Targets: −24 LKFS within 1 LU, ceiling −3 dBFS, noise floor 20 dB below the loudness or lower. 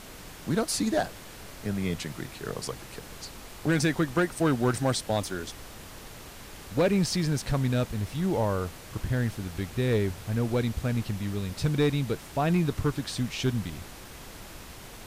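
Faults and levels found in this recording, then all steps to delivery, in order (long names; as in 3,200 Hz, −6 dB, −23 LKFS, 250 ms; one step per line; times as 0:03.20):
share of clipped samples 0.6%; peaks flattened at −17.5 dBFS; background noise floor −45 dBFS; target noise floor −49 dBFS; integrated loudness −28.5 LKFS; sample peak −17.5 dBFS; target loudness −24.0 LKFS
→ clipped peaks rebuilt −17.5 dBFS
noise reduction from a noise print 6 dB
level +4.5 dB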